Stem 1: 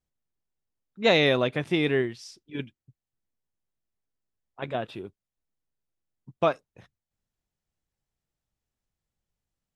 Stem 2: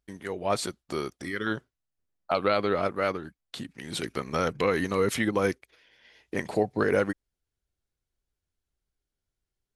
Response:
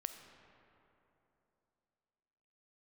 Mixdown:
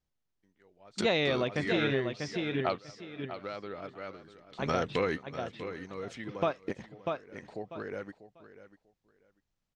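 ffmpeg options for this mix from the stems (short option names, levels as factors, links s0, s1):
-filter_complex "[0:a]volume=1.12,asplit=3[s0][s1][s2];[s1]volume=0.398[s3];[1:a]bandreject=f=1100:w=25,adelay=350,volume=1.33,asplit=2[s4][s5];[s5]volume=0.133[s6];[s2]apad=whole_len=445523[s7];[s4][s7]sidechaingate=range=0.0251:threshold=0.00447:ratio=16:detection=peak[s8];[s3][s6]amix=inputs=2:normalize=0,aecho=0:1:643|1286|1929:1|0.18|0.0324[s9];[s0][s8][s9]amix=inputs=3:normalize=0,lowpass=f=6800:w=0.5412,lowpass=f=6800:w=1.3066,acompressor=threshold=0.0282:ratio=2"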